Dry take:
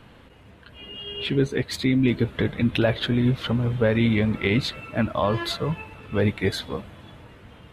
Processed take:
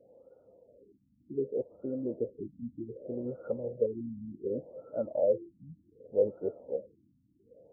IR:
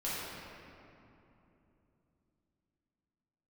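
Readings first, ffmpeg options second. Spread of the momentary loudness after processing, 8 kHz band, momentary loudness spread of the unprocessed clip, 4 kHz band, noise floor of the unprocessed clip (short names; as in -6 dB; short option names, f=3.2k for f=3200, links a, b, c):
13 LU, n/a, 13 LU, under -40 dB, -50 dBFS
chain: -filter_complex "[0:a]asplit=3[a][b][c];[a]bandpass=f=530:t=q:w=8,volume=0dB[d];[b]bandpass=f=1.84k:t=q:w=8,volume=-6dB[e];[c]bandpass=f=2.48k:t=q:w=8,volume=-9dB[f];[d][e][f]amix=inputs=3:normalize=0,afftfilt=real='re*lt(b*sr/1024,290*pow(1500/290,0.5+0.5*sin(2*PI*0.66*pts/sr)))':imag='im*lt(b*sr/1024,290*pow(1500/290,0.5+0.5*sin(2*PI*0.66*pts/sr)))':win_size=1024:overlap=0.75,volume=4.5dB"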